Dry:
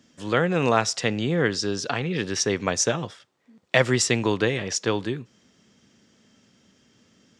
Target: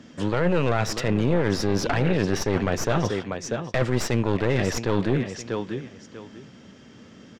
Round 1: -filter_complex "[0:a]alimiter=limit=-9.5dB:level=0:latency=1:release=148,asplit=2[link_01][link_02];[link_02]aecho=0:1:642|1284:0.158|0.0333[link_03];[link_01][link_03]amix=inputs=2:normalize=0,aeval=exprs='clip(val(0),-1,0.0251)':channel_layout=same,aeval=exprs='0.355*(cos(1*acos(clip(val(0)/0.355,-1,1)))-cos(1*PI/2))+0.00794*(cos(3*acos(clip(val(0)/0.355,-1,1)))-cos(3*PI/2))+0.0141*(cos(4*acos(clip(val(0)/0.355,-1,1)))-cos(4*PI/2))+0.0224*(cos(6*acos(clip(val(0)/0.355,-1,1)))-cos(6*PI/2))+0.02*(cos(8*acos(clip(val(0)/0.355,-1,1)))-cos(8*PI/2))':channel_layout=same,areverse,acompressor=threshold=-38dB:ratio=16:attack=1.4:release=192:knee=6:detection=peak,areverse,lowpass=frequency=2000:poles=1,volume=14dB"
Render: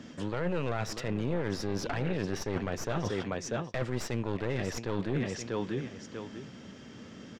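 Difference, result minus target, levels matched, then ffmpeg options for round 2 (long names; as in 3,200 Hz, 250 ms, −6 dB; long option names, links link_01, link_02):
downward compressor: peak gain reduction +10 dB
-filter_complex "[0:a]alimiter=limit=-9.5dB:level=0:latency=1:release=148,asplit=2[link_01][link_02];[link_02]aecho=0:1:642|1284:0.158|0.0333[link_03];[link_01][link_03]amix=inputs=2:normalize=0,aeval=exprs='clip(val(0),-1,0.0251)':channel_layout=same,aeval=exprs='0.355*(cos(1*acos(clip(val(0)/0.355,-1,1)))-cos(1*PI/2))+0.00794*(cos(3*acos(clip(val(0)/0.355,-1,1)))-cos(3*PI/2))+0.0141*(cos(4*acos(clip(val(0)/0.355,-1,1)))-cos(4*PI/2))+0.0224*(cos(6*acos(clip(val(0)/0.355,-1,1)))-cos(6*PI/2))+0.02*(cos(8*acos(clip(val(0)/0.355,-1,1)))-cos(8*PI/2))':channel_layout=same,areverse,acompressor=threshold=-27.5dB:ratio=16:attack=1.4:release=192:knee=6:detection=peak,areverse,lowpass=frequency=2000:poles=1,volume=14dB"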